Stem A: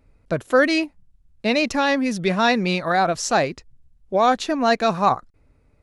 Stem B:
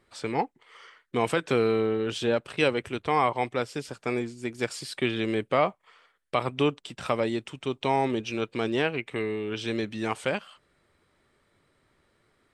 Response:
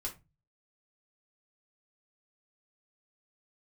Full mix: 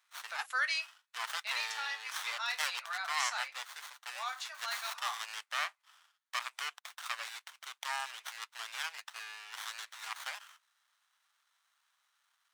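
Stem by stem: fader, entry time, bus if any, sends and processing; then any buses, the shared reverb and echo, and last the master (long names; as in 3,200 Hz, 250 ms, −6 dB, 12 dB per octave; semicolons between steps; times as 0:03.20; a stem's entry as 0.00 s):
−6.0 dB, 0.00 s, send −8.5 dB, automatic ducking −13 dB, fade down 1.95 s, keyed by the second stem
−2.0 dB, 0.00 s, no send, parametric band 7,500 Hz +13 dB 2.8 octaves; windowed peak hold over 17 samples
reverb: on, RT60 0.25 s, pre-delay 3 ms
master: Bessel high-pass filter 1,600 Hz, order 6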